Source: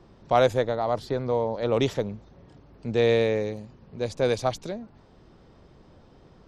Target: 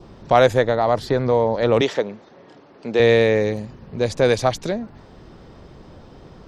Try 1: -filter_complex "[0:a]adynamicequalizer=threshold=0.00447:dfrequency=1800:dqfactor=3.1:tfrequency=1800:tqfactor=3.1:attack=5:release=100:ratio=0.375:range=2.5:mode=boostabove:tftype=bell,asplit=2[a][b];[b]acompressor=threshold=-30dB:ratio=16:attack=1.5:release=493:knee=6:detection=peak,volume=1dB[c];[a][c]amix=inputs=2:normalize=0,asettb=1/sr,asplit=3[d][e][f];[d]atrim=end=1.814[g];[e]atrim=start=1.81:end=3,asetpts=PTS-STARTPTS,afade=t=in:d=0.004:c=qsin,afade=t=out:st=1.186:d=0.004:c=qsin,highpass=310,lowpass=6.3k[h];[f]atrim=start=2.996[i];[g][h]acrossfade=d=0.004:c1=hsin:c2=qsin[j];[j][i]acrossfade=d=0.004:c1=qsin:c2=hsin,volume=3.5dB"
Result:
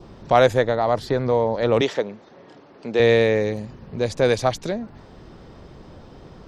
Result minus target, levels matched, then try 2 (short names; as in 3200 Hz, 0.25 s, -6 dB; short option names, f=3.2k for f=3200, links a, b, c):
compressor: peak gain reduction +7 dB
-filter_complex "[0:a]adynamicequalizer=threshold=0.00447:dfrequency=1800:dqfactor=3.1:tfrequency=1800:tqfactor=3.1:attack=5:release=100:ratio=0.375:range=2.5:mode=boostabove:tftype=bell,asplit=2[a][b];[b]acompressor=threshold=-22.5dB:ratio=16:attack=1.5:release=493:knee=6:detection=peak,volume=1dB[c];[a][c]amix=inputs=2:normalize=0,asettb=1/sr,asplit=3[d][e][f];[d]atrim=end=1.814[g];[e]atrim=start=1.81:end=3,asetpts=PTS-STARTPTS,afade=t=in:d=0.004:c=qsin,afade=t=out:st=1.186:d=0.004:c=qsin,highpass=310,lowpass=6.3k[h];[f]atrim=start=2.996[i];[g][h]acrossfade=d=0.004:c1=hsin:c2=qsin[j];[j][i]acrossfade=d=0.004:c1=qsin:c2=hsin,volume=3.5dB"